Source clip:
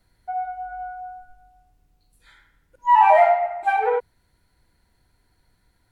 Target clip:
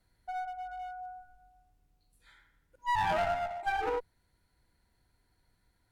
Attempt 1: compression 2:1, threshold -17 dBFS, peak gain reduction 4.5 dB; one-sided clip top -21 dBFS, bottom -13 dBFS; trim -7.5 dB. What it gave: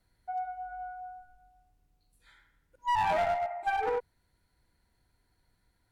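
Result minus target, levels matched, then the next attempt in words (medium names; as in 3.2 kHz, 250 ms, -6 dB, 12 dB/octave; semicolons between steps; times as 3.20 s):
one-sided clip: distortion -4 dB
compression 2:1, threshold -17 dBFS, peak gain reduction 4.5 dB; one-sided clip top -30.5 dBFS, bottom -13 dBFS; trim -7.5 dB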